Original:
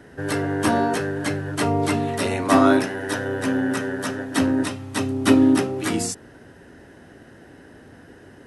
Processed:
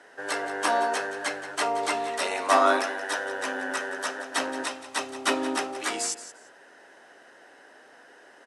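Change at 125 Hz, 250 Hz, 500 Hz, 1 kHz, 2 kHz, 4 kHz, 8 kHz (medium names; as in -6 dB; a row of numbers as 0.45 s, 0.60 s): under -25 dB, -16.5 dB, -5.5 dB, -0.5 dB, -0.5 dB, -0.5 dB, -1.0 dB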